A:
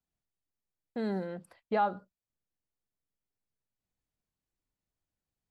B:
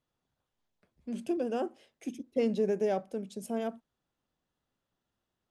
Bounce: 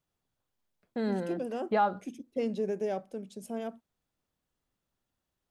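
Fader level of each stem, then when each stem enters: +2.0 dB, -3.0 dB; 0.00 s, 0.00 s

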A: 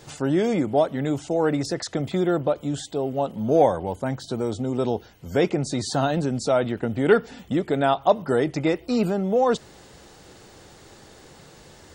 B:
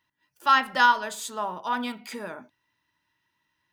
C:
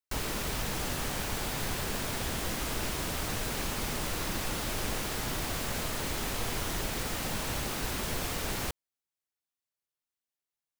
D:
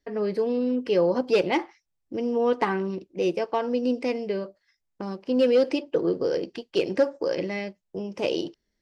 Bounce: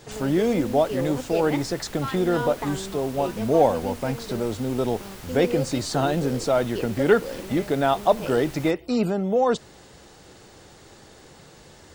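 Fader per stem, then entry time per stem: -0.5 dB, -14.5 dB, -8.0 dB, -8.0 dB; 0.00 s, 1.55 s, 0.00 s, 0.00 s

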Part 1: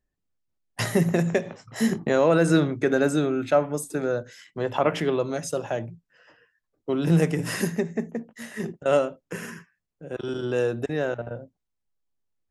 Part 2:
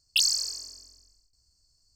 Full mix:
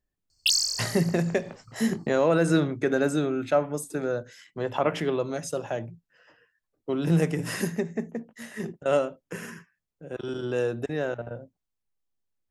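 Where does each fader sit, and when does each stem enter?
-2.5 dB, +0.5 dB; 0.00 s, 0.30 s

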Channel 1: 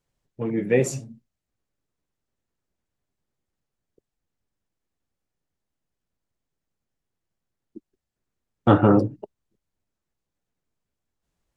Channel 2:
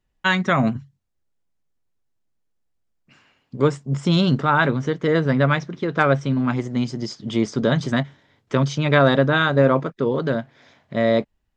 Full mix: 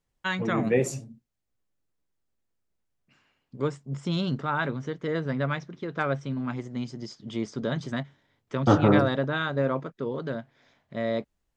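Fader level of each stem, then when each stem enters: -3.5 dB, -10.0 dB; 0.00 s, 0.00 s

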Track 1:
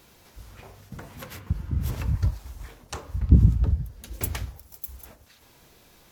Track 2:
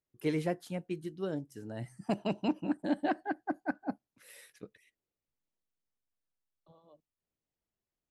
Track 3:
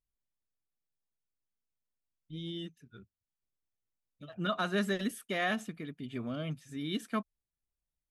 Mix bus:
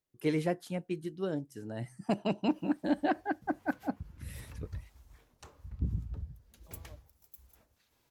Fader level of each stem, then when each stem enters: -17.5 dB, +1.5 dB, mute; 2.50 s, 0.00 s, mute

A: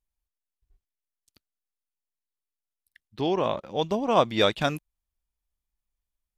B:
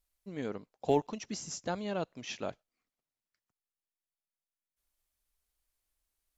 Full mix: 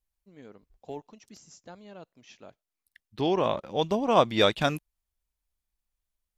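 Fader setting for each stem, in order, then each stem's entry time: 0.0 dB, -11.5 dB; 0.00 s, 0.00 s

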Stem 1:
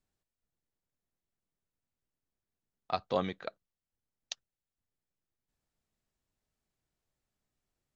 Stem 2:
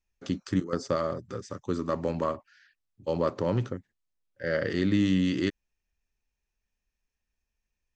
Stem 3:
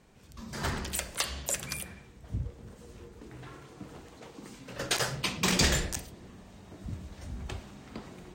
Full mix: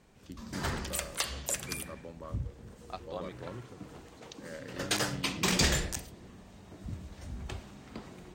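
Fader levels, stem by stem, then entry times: -9.5 dB, -17.0 dB, -1.5 dB; 0.00 s, 0.00 s, 0.00 s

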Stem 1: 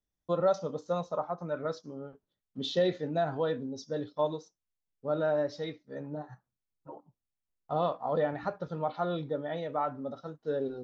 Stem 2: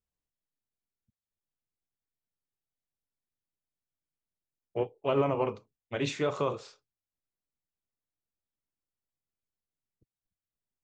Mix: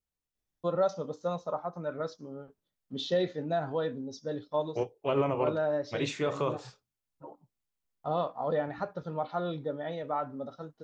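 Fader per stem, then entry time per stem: -1.0 dB, -1.0 dB; 0.35 s, 0.00 s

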